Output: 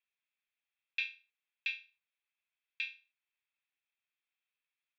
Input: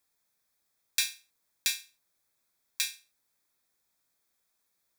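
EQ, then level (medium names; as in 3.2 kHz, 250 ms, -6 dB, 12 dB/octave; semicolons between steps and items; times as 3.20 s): band-pass filter 2.8 kHz, Q 7.4; distance through air 370 m; +11.0 dB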